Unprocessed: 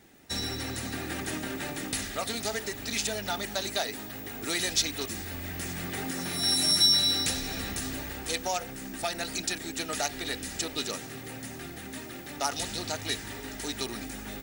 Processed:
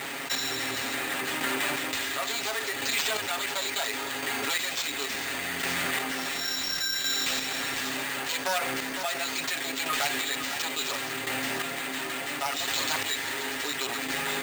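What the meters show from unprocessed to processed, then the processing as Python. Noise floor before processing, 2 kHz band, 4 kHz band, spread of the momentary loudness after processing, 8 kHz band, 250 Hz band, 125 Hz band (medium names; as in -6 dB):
-42 dBFS, +8.0 dB, -0.5 dB, 4 LU, +0.5 dB, -1.5 dB, -7.0 dB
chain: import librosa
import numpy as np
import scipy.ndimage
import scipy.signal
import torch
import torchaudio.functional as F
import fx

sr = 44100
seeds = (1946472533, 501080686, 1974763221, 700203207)

y = fx.lower_of_two(x, sr, delay_ms=7.3)
y = fx.highpass(y, sr, hz=950.0, slope=6)
y = fx.high_shelf(y, sr, hz=2800.0, db=11.5)
y = fx.rider(y, sr, range_db=3, speed_s=0.5)
y = fx.chopper(y, sr, hz=0.71, depth_pct=65, duty_pct=25)
y = fx.air_absorb(y, sr, metres=310.0)
y = y + 10.0 ** (-22.5 / 20.0) * np.pad(y, (int(503 * sr / 1000.0), 0))[:len(y)]
y = np.repeat(y[::4], 4)[:len(y)]
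y = fx.env_flatten(y, sr, amount_pct=70)
y = y * librosa.db_to_amplitude(4.5)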